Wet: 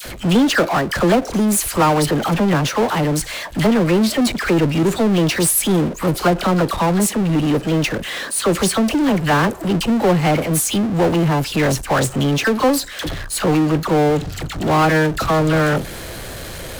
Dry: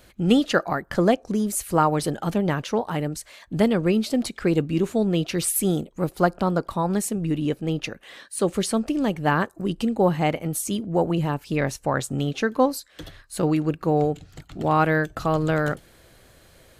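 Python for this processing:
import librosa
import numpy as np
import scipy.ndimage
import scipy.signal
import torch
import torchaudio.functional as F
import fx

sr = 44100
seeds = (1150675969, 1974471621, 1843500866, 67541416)

y = fx.dispersion(x, sr, late='lows', ms=54.0, hz=1100.0)
y = fx.power_curve(y, sr, exponent=0.5)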